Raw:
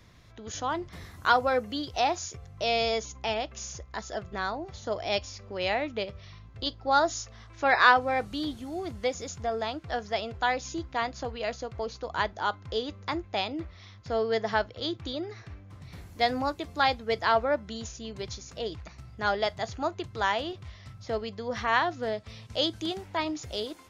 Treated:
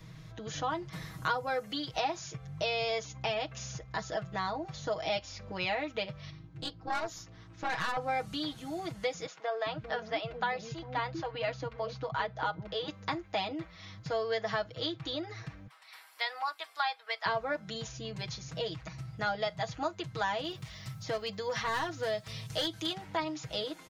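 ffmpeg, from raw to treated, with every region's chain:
-filter_complex "[0:a]asettb=1/sr,asplit=3[a][b][c];[a]atrim=end=6.304[d];[b]atrim=start=6.3:end=7.97,asetpts=PTS-STARTPTS,afade=t=in:d=0.004:c=qsin,afade=t=out:st=1.666:d=0.004:c=qsin,aeval=exprs='(tanh(11.2*val(0)+0.75)-tanh(0.75))/11.2':c=same,tremolo=f=230:d=0.75[e];[c]atrim=start=7.966[f];[d][e]acrossfade=d=0.004:c1=hsin:c2=qsin[g];[g][f]acrossfade=d=0.004:c1=qsin:c2=hsin,asettb=1/sr,asplit=3[h][i][j];[h]atrim=end=9.264[k];[i]atrim=start=9.26:end=12.88,asetpts=PTS-STARTPTS,afade=t=in:d=0.004:c=qsin,afade=t=out:st=3.616:d=0.004:c=qsin,lowpass=3.5k,acrossover=split=390[l][m];[l]adelay=400[n];[n][m]amix=inputs=2:normalize=0,atrim=end_sample=159642[o];[j]atrim=start=12.876[p];[k][o]acrossfade=d=0.004:c1=hsin:c2=qsin[q];[q][p]acrossfade=d=0.004:c1=qsin:c2=hsin,asettb=1/sr,asplit=3[r][s][t];[r]atrim=end=15.674[u];[s]atrim=start=15.67:end=17.26,asetpts=PTS-STARTPTS,afade=t=in:d=0.004:c=qsin,afade=t=out:st=1.586:d=0.004:c=qsin,highpass=f=880:w=0.5412,highpass=f=880:w=1.3066,equalizer=f=6.5k:w=6.5:g=-14[v];[t]atrim=start=17.256[w];[u][v]acrossfade=d=0.004:c1=hsin:c2=qsin[x];[x][w]acrossfade=d=0.004:c1=qsin:c2=hsin,asettb=1/sr,asplit=3[y][z][aa];[y]atrim=end=20.444[ab];[z]atrim=start=20.44:end=22.93,asetpts=PTS-STARTPTS,afade=t=in:d=0.004:c=qsin,afade=t=out:st=2.486:d=0.004:c=qsin,aemphasis=mode=production:type=50fm,volume=23.5dB,asoftclip=hard,volume=-23.5dB[ac];[aa]atrim=start=22.926[ad];[ab][ac]acrossfade=d=0.004:c1=hsin:c2=qsin[ae];[ae][ad]acrossfade=d=0.004:c1=qsin:c2=hsin,equalizer=f=140:t=o:w=0.76:g=11,aecho=1:1:6.3:0.83,acrossover=split=620|4600[af][ag][ah];[af]acompressor=threshold=-40dB:ratio=4[ai];[ag]acompressor=threshold=-32dB:ratio=4[aj];[ah]acompressor=threshold=-52dB:ratio=4[ak];[ai][aj][ak]amix=inputs=3:normalize=0"

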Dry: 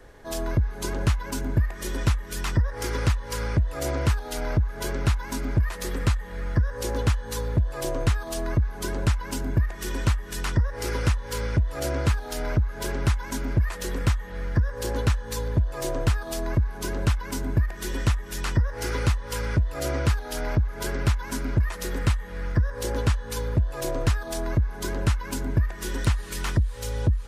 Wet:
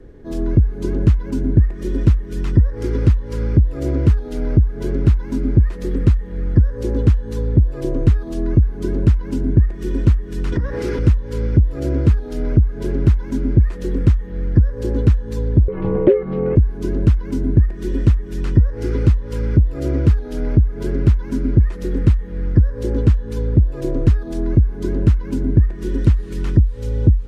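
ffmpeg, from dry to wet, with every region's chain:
-filter_complex "[0:a]asettb=1/sr,asplit=3[a][b][c];[a]atrim=end=10.524[d];[b]atrim=start=10.52:end=10.99,asetpts=PTS-STARTPTS,afade=t=in:d=0.004:c=qsin,afade=t=out:st=0.466:d=0.004:c=qsin,asplit=2[e][f];[f]highpass=f=720:p=1,volume=20dB,asoftclip=type=tanh:threshold=-11.5dB[g];[e][g]amix=inputs=2:normalize=0,lowpass=f=6.4k:p=1,volume=-6dB,acompressor=threshold=-23dB:ratio=6:attack=3.2:release=140:knee=1:detection=peak,aeval=exprs='val(0)+0.0126*(sin(2*PI*60*n/s)+sin(2*PI*2*60*n/s)/2+sin(2*PI*3*60*n/s)/3+sin(2*PI*4*60*n/s)/4+sin(2*PI*5*60*n/s)/5)':c=same[h];[c]atrim=start=10.986[i];[d][h]acrossfade=d=0.004:c1=hsin:c2=qsin[j];[j][i]acrossfade=d=0.004:c1=qsin:c2=hsin,asettb=1/sr,asplit=3[k][l][m];[k]atrim=end=15.684[n];[l]atrim=start=15.68:end=16.56,asetpts=PTS-STARTPTS,afade=t=in:d=0.004:c=qsin,afade=t=out:st=0.876:d=0.004:c=qsin,lowpass=f=2.6k:w=0.5412,lowpass=f=2.6k:w=1.3066,acontrast=32,aeval=exprs='val(0)*sin(2*PI*470*n/s)':c=same[o];[m]atrim=start=16.556[p];[n][o]acrossfade=d=0.004:c1=hsin:c2=qsin[q];[q][p]acrossfade=d=0.004:c1=qsin:c2=hsin,lowpass=f=3.2k:p=1,lowshelf=f=520:t=q:w=1.5:g=13,volume=-4dB"

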